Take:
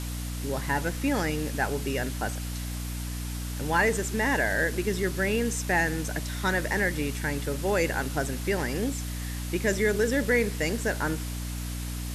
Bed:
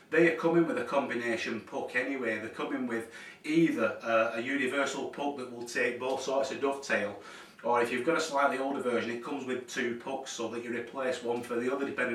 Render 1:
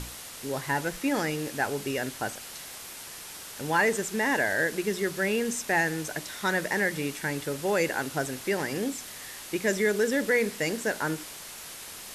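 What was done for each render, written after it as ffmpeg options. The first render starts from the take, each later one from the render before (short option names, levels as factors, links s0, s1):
-af "bandreject=f=60:t=h:w=6,bandreject=f=120:t=h:w=6,bandreject=f=180:t=h:w=6,bandreject=f=240:t=h:w=6,bandreject=f=300:t=h:w=6"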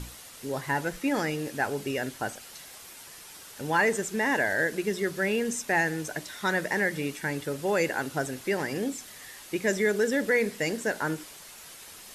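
-af "afftdn=nr=6:nf=-43"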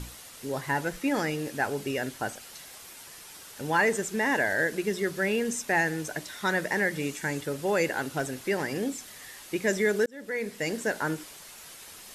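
-filter_complex "[0:a]asettb=1/sr,asplit=3[s0][s1][s2];[s0]atrim=end=7.004[s3];[s1]atrim=start=7:end=7.41,asetpts=PTS-STARTPTS,afade=t=in:d=0.004:c=qsin,afade=t=out:st=0.406:d=0.004:c=qsin,equalizer=f=7000:w=3:g=7[s4];[s2]atrim=start=7.406[s5];[s3][s4]acrossfade=d=0.004:c1=hsin:c2=qsin[s6];[s6][s5]acrossfade=d=0.004:c1=qsin:c2=hsin,asplit=3[s7][s8][s9];[s7]afade=t=out:st=7.93:d=0.02[s10];[s8]asoftclip=type=hard:threshold=0.0794,afade=t=in:st=7.93:d=0.02,afade=t=out:st=8.48:d=0.02[s11];[s9]afade=t=in:st=8.48:d=0.02[s12];[s10][s11][s12]amix=inputs=3:normalize=0,asplit=2[s13][s14];[s13]atrim=end=10.06,asetpts=PTS-STARTPTS,afade=t=out:st=10.056:d=0.004:c=hsin[s15];[s14]atrim=start=10.06,asetpts=PTS-STARTPTS,afade=t=in:d=0.72[s16];[s15][s16]concat=n=2:v=0:a=1"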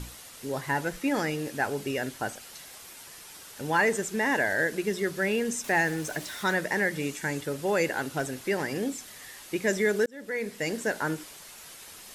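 -filter_complex "[0:a]asettb=1/sr,asplit=3[s0][s1][s2];[s0]atrim=end=5.644[s3];[s1]atrim=start=5.64:end=6.55,asetpts=PTS-STARTPTS,afade=t=in:d=0.004:c=qsin,afade=t=out:st=0.906:d=0.004:c=qsin,aeval=exprs='val(0)+0.5*0.00794*sgn(val(0))':c=same[s4];[s2]atrim=start=6.546[s5];[s3][s4]acrossfade=d=0.004:c1=hsin:c2=qsin[s6];[s6][s5]acrossfade=d=0.004:c1=qsin:c2=hsin"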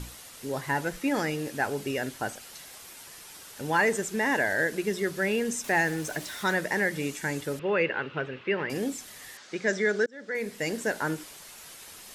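-filter_complex "[0:a]asettb=1/sr,asplit=3[s0][s1][s2];[s0]atrim=end=7.594[s3];[s1]atrim=start=7.59:end=8.7,asetpts=PTS-STARTPTS,afade=t=in:d=0.004:c=qsin,afade=t=out:st=1.106:d=0.004:c=qsin,highpass=110,equalizer=f=270:t=q:w=4:g=-7,equalizer=f=450:t=q:w=4:g=3,equalizer=f=730:t=q:w=4:g=-9,equalizer=f=1200:t=q:w=4:g=4,equalizer=f=2700:t=q:w=4:g=7,lowpass=f=3100:w=0.5412,lowpass=f=3100:w=1.3066[s4];[s2]atrim=start=8.696[s5];[s3][s4]acrossfade=d=0.004:c1=hsin:c2=qsin[s6];[s6][s5]acrossfade=d=0.004:c1=qsin:c2=hsin,asettb=1/sr,asplit=3[s7][s8][s9];[s7]atrim=end=9.374[s10];[s8]atrim=start=9.37:end=10.35,asetpts=PTS-STARTPTS,afade=t=in:d=0.004:c=qsin,afade=t=out:st=0.976:d=0.004:c=qsin,highpass=180,equalizer=f=320:t=q:w=4:g=-6,equalizer=f=940:t=q:w=4:g=-4,equalizer=f=1500:t=q:w=4:g=5,equalizer=f=2700:t=q:w=4:g=-5,lowpass=f=6500:w=0.5412,lowpass=f=6500:w=1.3066[s11];[s9]atrim=start=10.346[s12];[s10][s11]acrossfade=d=0.004:c1=hsin:c2=qsin[s13];[s13][s12]acrossfade=d=0.004:c1=qsin:c2=hsin"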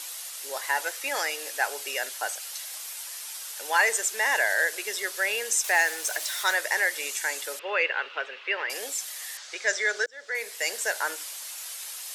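-af "highpass=f=540:w=0.5412,highpass=f=540:w=1.3066,highshelf=f=2500:g=10.5"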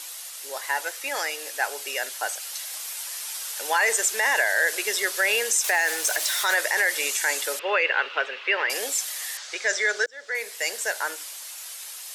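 -af "dynaudnorm=f=330:g=17:m=2.37,alimiter=limit=0.251:level=0:latency=1:release=27"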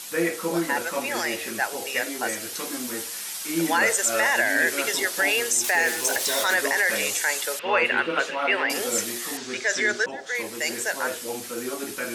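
-filter_complex "[1:a]volume=0.944[s0];[0:a][s0]amix=inputs=2:normalize=0"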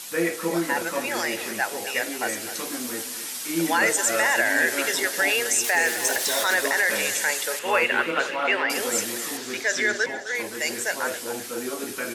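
-af "aecho=1:1:258|516|774|1032:0.237|0.102|0.0438|0.0189"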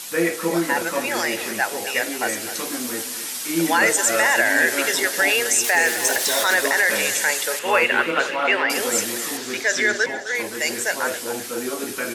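-af "volume=1.5"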